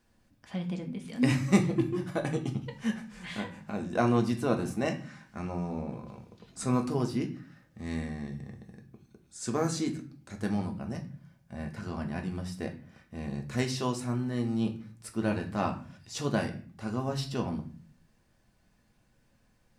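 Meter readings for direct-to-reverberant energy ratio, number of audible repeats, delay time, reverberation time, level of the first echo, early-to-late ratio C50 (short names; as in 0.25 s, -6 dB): 3.0 dB, none, none, 0.45 s, none, 11.5 dB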